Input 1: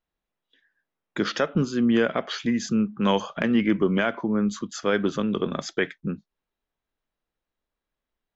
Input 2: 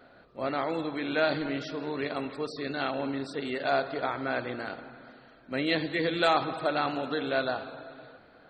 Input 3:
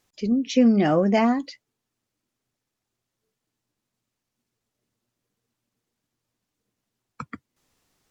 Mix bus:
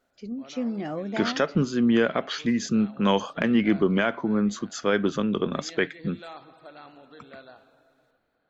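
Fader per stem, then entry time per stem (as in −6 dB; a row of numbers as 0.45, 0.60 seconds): 0.0, −18.0, −12.0 decibels; 0.00, 0.00, 0.00 seconds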